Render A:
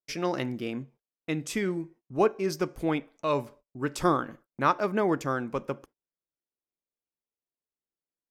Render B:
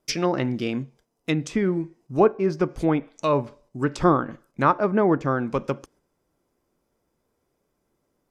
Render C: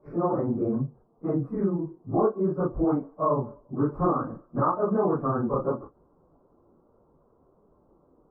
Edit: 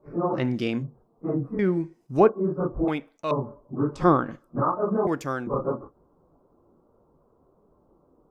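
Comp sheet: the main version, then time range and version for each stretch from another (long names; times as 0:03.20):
C
0:00.38–0:00.82: punch in from B, crossfade 0.10 s
0:01.59–0:02.29: punch in from B
0:02.88–0:03.31: punch in from A
0:04.00–0:04.44: punch in from B, crossfade 0.16 s
0:05.07–0:05.47: punch in from A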